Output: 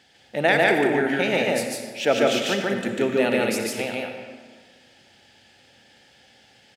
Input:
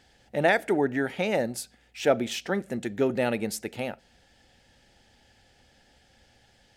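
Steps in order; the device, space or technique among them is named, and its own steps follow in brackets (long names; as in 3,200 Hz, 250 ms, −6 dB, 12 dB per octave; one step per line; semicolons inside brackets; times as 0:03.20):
stadium PA (high-pass filter 130 Hz 12 dB per octave; parametric band 2,900 Hz +5.5 dB 1.3 octaves; loudspeakers that aren't time-aligned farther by 50 metres −1 dB, 62 metres −10 dB; convolution reverb RT60 1.6 s, pre-delay 55 ms, DRR 5.5 dB)
level +1 dB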